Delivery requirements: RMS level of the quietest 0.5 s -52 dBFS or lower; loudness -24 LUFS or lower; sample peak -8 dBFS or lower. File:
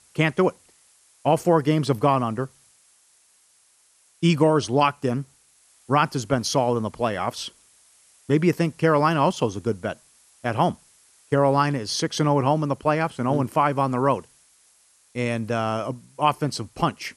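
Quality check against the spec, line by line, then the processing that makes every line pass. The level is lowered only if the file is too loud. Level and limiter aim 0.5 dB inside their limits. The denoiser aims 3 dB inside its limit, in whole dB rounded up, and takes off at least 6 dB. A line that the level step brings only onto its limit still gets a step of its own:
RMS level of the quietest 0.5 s -60 dBFS: OK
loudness -23.0 LUFS: fail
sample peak -5.5 dBFS: fail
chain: gain -1.5 dB; limiter -8.5 dBFS

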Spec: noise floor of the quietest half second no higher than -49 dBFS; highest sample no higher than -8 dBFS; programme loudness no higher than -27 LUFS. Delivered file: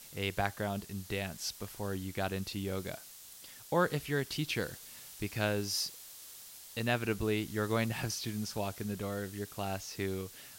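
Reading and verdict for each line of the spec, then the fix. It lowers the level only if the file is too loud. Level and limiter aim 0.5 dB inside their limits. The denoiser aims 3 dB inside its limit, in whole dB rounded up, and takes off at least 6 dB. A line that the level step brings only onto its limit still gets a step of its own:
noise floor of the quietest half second -52 dBFS: OK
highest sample -14.0 dBFS: OK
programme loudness -35.5 LUFS: OK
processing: none

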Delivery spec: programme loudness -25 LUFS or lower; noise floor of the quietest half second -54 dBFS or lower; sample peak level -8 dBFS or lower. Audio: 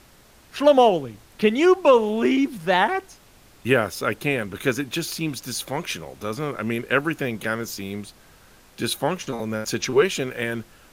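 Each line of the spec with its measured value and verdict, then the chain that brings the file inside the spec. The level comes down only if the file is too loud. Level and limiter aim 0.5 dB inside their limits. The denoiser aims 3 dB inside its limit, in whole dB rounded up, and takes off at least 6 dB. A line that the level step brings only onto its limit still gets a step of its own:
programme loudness -22.5 LUFS: fail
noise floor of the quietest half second -52 dBFS: fail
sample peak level -5.5 dBFS: fail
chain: gain -3 dB

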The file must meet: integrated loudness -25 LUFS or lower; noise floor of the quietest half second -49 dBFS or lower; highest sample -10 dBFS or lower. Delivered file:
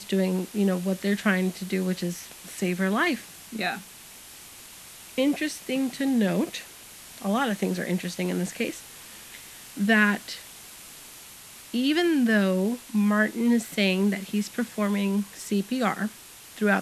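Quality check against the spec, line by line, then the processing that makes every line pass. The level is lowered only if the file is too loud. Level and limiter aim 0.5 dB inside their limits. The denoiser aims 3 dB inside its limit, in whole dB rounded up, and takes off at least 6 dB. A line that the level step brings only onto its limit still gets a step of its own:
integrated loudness -26.0 LUFS: OK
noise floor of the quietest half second -46 dBFS: fail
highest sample -6.5 dBFS: fail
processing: denoiser 6 dB, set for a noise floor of -46 dBFS; limiter -10.5 dBFS

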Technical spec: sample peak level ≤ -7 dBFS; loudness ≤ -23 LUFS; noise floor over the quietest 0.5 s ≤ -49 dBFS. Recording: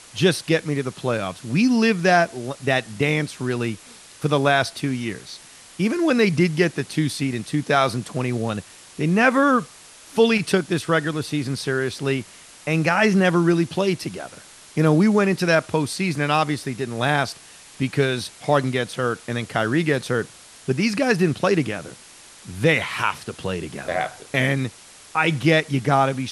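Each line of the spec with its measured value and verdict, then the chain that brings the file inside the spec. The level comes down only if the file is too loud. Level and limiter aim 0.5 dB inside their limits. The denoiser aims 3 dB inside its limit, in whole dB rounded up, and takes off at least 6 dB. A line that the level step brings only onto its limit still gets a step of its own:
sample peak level -4.0 dBFS: fail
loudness -21.5 LUFS: fail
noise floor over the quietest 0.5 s -46 dBFS: fail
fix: denoiser 6 dB, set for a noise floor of -46 dBFS; gain -2 dB; limiter -7.5 dBFS

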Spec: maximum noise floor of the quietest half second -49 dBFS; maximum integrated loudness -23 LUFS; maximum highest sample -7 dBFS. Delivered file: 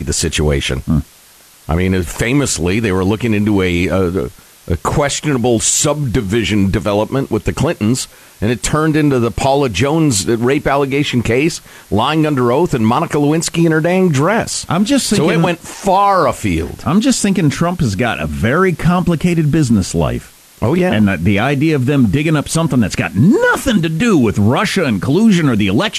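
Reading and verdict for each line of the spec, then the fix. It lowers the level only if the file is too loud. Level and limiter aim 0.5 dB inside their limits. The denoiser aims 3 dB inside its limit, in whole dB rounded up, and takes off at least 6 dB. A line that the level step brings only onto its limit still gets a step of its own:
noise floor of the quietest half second -44 dBFS: fail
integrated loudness -14.0 LUFS: fail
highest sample -2.5 dBFS: fail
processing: gain -9.5 dB

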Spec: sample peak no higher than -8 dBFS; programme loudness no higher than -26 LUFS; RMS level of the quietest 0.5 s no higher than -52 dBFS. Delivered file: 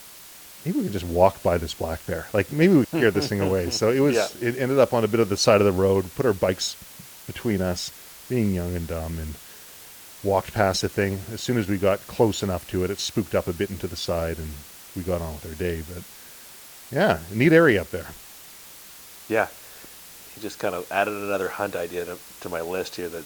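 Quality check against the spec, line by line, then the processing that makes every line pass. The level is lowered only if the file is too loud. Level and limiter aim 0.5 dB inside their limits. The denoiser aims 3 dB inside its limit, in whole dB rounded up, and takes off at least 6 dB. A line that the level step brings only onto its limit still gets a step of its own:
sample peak -3.5 dBFS: fail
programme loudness -24.0 LUFS: fail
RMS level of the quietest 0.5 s -45 dBFS: fail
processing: denoiser 8 dB, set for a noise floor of -45 dBFS; gain -2.5 dB; limiter -8.5 dBFS

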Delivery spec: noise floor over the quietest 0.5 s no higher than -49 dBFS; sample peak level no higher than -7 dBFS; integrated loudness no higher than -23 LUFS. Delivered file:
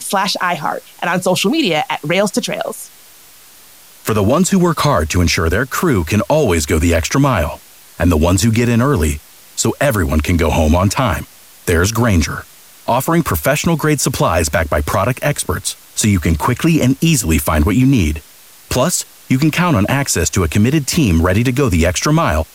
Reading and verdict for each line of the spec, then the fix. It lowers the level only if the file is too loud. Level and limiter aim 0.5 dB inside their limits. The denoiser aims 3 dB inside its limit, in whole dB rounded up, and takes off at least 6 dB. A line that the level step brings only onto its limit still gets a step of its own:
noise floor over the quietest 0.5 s -42 dBFS: fail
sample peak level -4.0 dBFS: fail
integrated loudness -15.0 LUFS: fail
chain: gain -8.5 dB

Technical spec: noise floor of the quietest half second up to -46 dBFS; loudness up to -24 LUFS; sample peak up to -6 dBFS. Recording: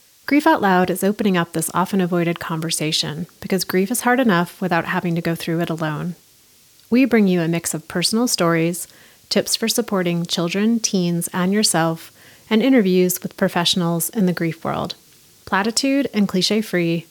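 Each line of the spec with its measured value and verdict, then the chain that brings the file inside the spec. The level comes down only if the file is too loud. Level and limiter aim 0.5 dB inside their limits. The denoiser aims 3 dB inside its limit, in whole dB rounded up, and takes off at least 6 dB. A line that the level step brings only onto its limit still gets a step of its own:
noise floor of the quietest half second -52 dBFS: OK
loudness -19.0 LUFS: fail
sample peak -4.0 dBFS: fail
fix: gain -5.5 dB

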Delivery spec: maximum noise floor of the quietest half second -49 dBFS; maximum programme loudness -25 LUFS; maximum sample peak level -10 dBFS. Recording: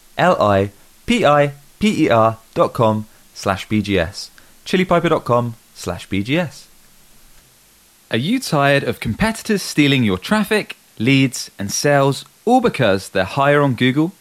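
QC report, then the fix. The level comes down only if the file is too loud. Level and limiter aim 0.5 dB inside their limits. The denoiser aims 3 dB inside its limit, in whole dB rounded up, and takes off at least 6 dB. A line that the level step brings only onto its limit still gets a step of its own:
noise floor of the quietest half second -51 dBFS: OK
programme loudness -17.0 LUFS: fail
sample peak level -3.5 dBFS: fail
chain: gain -8.5 dB

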